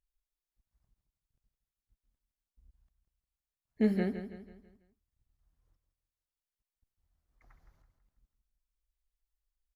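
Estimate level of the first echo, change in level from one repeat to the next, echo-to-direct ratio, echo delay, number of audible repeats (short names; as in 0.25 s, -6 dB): -10.5 dB, -7.5 dB, -9.5 dB, 0.164 s, 4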